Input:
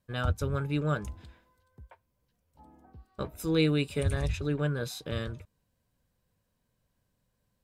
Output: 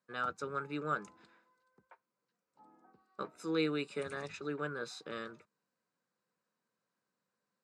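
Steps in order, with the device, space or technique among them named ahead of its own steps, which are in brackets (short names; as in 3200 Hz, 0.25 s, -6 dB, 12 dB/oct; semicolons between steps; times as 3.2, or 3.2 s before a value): television speaker (speaker cabinet 210–7600 Hz, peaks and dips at 260 Hz -6 dB, 620 Hz -5 dB, 1300 Hz +8 dB, 3200 Hz -8 dB, 5900 Hz -3 dB); gain -4.5 dB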